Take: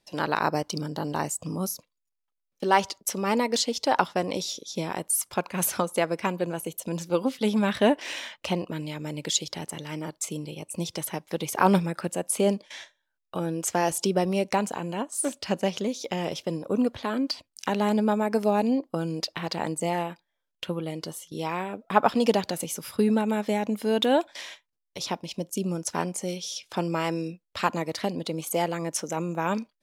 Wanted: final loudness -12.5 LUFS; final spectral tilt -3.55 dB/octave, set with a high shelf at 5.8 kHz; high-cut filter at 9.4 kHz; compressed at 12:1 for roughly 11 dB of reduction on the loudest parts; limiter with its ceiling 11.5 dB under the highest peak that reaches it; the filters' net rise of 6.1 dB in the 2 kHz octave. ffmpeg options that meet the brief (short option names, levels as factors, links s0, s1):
-af "lowpass=9400,equalizer=f=2000:t=o:g=7,highshelf=f=5800:g=8.5,acompressor=threshold=0.0631:ratio=12,volume=9.44,alimiter=limit=0.891:level=0:latency=1"